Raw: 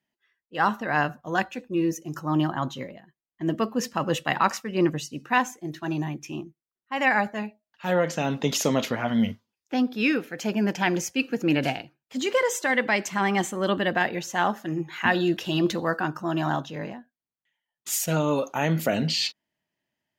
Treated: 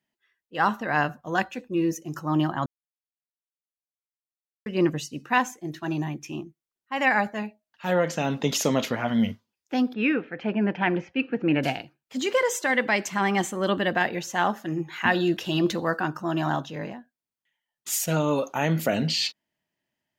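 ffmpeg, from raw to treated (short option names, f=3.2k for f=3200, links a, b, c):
-filter_complex "[0:a]asplit=3[a][b][c];[a]afade=t=out:st=9.92:d=0.02[d];[b]lowpass=f=2.8k:w=0.5412,lowpass=f=2.8k:w=1.3066,afade=t=in:st=9.92:d=0.02,afade=t=out:st=11.62:d=0.02[e];[c]afade=t=in:st=11.62:d=0.02[f];[d][e][f]amix=inputs=3:normalize=0,asplit=3[g][h][i];[g]atrim=end=2.66,asetpts=PTS-STARTPTS,afade=t=out:st=2.656:d=0.004:c=hsin[j];[h]atrim=start=2.66:end=4.66,asetpts=PTS-STARTPTS,volume=0[k];[i]atrim=start=4.66,asetpts=PTS-STARTPTS,afade=t=in:d=0.004:c=hsin[l];[j][k][l]concat=n=3:v=0:a=1"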